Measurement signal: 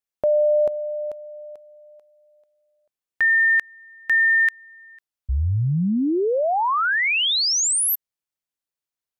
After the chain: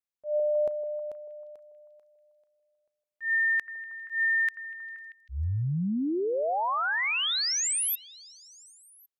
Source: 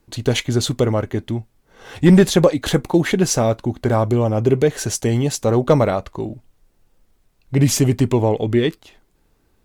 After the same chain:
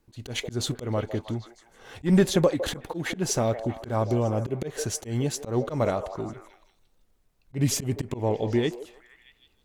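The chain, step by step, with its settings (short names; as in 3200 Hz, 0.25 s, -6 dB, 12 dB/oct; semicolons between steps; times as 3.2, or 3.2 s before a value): delay with a stepping band-pass 0.158 s, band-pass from 570 Hz, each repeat 0.7 oct, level -9 dB; auto swell 0.131 s; gain -7.5 dB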